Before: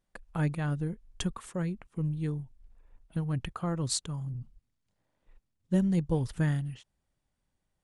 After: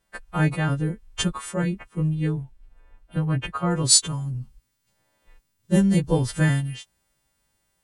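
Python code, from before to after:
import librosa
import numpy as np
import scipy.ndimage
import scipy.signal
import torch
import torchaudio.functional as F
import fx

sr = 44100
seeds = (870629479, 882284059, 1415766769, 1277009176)

y = fx.freq_snap(x, sr, grid_st=2)
y = fx.bass_treble(y, sr, bass_db=-1, treble_db=fx.steps((0.0, -8.0), (2.14, -14.0), (3.7, -3.0)))
y = y * 10.0 ** (9.0 / 20.0)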